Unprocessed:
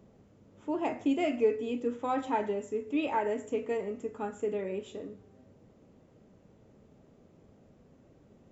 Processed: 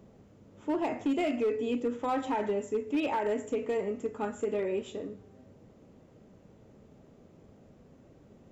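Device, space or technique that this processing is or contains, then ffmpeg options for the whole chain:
limiter into clipper: -filter_complex "[0:a]asettb=1/sr,asplit=3[a][b][c];[a]atrim=end=4.234[d];[b]atrim=start=4.23:end=4.9,asetpts=PTS-STARTPTS,afade=t=in:d=0.004:c=qsin,afade=t=out:st=0.666:d=0.004:c=qsin,asplit=2[e][f];[f]adelay=13,volume=-6.5dB[g];[e][g]amix=inputs=2:normalize=0,atrim=end_sample=29547[h];[c]atrim=start=4.896[i];[d][h]acrossfade=d=0.004:c1=hsin:c2=qsin[j];[j][i]acrossfade=d=0.004:c1=qsin:c2=hsin,alimiter=limit=-24dB:level=0:latency=1:release=72,asoftclip=type=hard:threshold=-26.5dB,volume=3dB"

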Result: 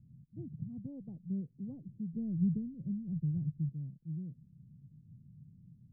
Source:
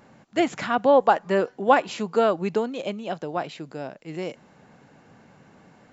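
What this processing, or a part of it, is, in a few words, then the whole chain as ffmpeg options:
the neighbour's flat through the wall: -filter_complex "[0:a]asettb=1/sr,asplit=3[a][b][c];[a]atrim=end=2.134[d];[b]atrim=start=2.13:end=3.69,asetpts=PTS-STARTPTS,afade=t=in:d=0.004:c=qsin,afade=t=out:st=1.556:d=0.004:c=qsin,aemphasis=mode=reproduction:type=bsi[e];[c]atrim=start=3.686[f];[d][e]acrossfade=d=0.004:c1=hsin:c2=qsin[g];[g][f]acrossfade=d=0.004:c1=qsin:c2=hsin,lowpass=f=150:w=0.5412,lowpass=f=150:w=1.3066,equalizer=f=140:t=o:w=0.77:g=4.5,volume=2dB"

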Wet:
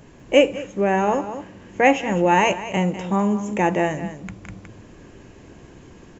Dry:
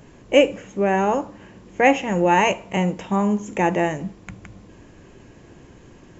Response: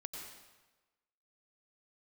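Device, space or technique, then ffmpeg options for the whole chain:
ducked delay: -filter_complex "[0:a]asplit=3[a][b][c];[b]adelay=200,volume=-2.5dB[d];[c]apad=whole_len=282127[e];[d][e]sidechaincompress=threshold=-27dB:ratio=8:attack=7.9:release=565[f];[a][f]amix=inputs=2:normalize=0"

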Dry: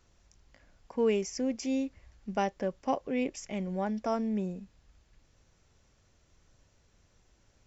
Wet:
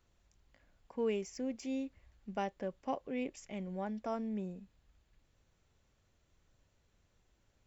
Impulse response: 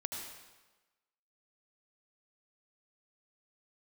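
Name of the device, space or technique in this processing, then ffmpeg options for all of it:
exciter from parts: -filter_complex "[0:a]asplit=2[a][b];[b]highpass=2.9k,asoftclip=type=tanh:threshold=-33.5dB,highpass=f=4.4k:w=0.5412,highpass=f=4.4k:w=1.3066,volume=-6dB[c];[a][c]amix=inputs=2:normalize=0,volume=-7dB"

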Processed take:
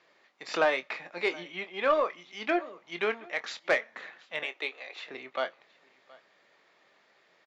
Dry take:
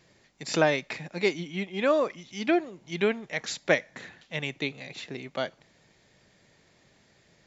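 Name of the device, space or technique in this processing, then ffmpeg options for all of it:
intercom: -filter_complex "[0:a]asettb=1/sr,asplit=3[a][b][c];[a]atrim=end=4.434[d];[b]atrim=start=4.43:end=5.06,asetpts=PTS-STARTPTS,afade=t=in:d=0.004:c=qsin,afade=t=out:st=0.626:d=0.004:c=qsin,highpass=f=350:w=0.5412,highpass=f=350:w=1.3066[e];[c]atrim=start=5.056[f];[d][e]acrossfade=d=0.004:c1=hsin:c2=qsin[g];[g][f]acrossfade=d=0.004:c1=qsin:c2=hsin,highpass=490,lowpass=3.5k,equalizer=f=1.2k:t=o:w=0.38:g=6,aecho=1:1:722:0.0631,asoftclip=type=tanh:threshold=-15dB,asplit=2[h][i];[i]adelay=23,volume=-11dB[j];[h][j]amix=inputs=2:normalize=0"

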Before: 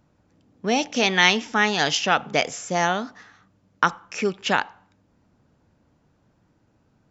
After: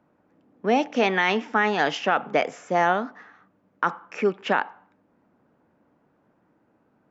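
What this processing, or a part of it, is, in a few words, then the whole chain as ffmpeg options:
DJ mixer with the lows and highs turned down: -filter_complex "[0:a]acrossover=split=190 2300:gain=0.126 1 0.126[a][b][c];[a][b][c]amix=inputs=3:normalize=0,alimiter=limit=-11.5dB:level=0:latency=1:release=33,volume=2.5dB"

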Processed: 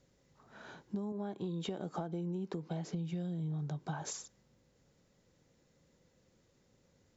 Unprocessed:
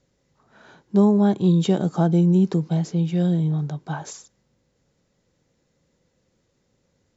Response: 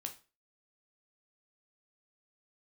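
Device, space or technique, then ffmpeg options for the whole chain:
serial compression, peaks first: -filter_complex "[0:a]asettb=1/sr,asplit=3[a][b][c];[a]atrim=end=1.124[d];[b]atrim=start=1.12:end=2.93,asetpts=PTS-STARTPTS,afade=t=in:d=0.004:c=qsin,afade=t=out:st=1.806:d=0.004:c=qsin,bass=f=250:g=-9,treble=f=4k:g=-7[e];[c]atrim=start=2.926[f];[d][e]acrossfade=d=0.004:c1=hsin:c2=qsin[g];[g][f]acrossfade=d=0.004:c1=qsin:c2=hsin,acompressor=threshold=-27dB:ratio=6,acompressor=threshold=-35dB:ratio=3,volume=-2dB"

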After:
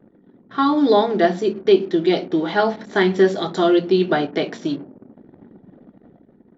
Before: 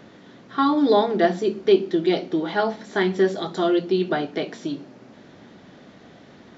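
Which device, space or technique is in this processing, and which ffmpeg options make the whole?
voice memo with heavy noise removal: -af "anlmdn=0.158,dynaudnorm=f=170:g=7:m=5dB"

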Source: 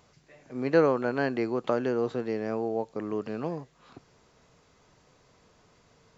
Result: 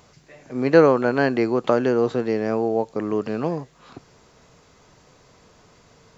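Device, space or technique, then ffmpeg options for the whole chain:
exciter from parts: -filter_complex "[0:a]asplit=2[a][b];[b]highpass=4k,asoftclip=type=tanh:threshold=-35.5dB,volume=-13.5dB[c];[a][c]amix=inputs=2:normalize=0,volume=8dB"

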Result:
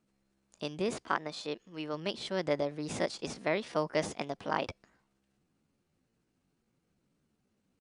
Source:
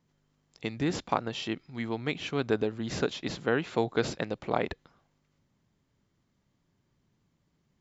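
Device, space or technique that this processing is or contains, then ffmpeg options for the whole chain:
chipmunk voice: -filter_complex "[0:a]asetrate=58866,aresample=44100,atempo=0.749154,asettb=1/sr,asplit=3[a][b][c];[a]atrim=end=0.944[d];[b]atrim=start=0.94:end=1.94,asetpts=PTS-STARTPTS,afade=t=in:d=0.004:c=qsin,afade=t=out:st=0.996:d=0.004:c=qsin,bass=f=250:g=-5,treble=f=4k:g=-4[e];[c]atrim=start=1.936[f];[d][e]acrossfade=d=0.004:c1=hsin:c2=qsin[g];[g][f]acrossfade=d=0.004:c1=qsin:c2=hsin,volume=-3.5dB"

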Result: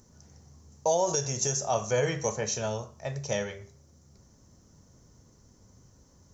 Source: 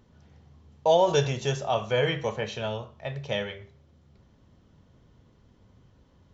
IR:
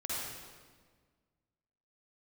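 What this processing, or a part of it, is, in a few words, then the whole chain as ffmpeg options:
over-bright horn tweeter: -af "highshelf=f=4.5k:t=q:w=3:g=11.5,alimiter=limit=-15.5dB:level=0:latency=1:release=292"

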